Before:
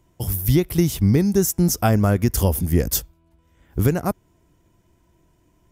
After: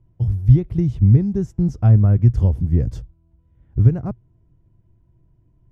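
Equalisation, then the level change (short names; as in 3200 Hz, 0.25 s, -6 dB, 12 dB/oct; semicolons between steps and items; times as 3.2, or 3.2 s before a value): air absorption 83 m; tilt -3.5 dB/oct; bell 120 Hz +11.5 dB 0.53 oct; -11.5 dB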